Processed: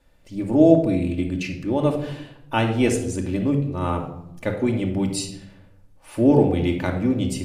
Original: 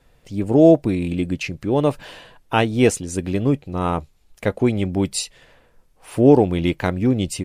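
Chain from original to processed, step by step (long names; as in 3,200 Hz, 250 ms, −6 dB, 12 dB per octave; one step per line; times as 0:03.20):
rectangular room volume 2,200 cubic metres, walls furnished, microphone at 2.5 metres
level −5.5 dB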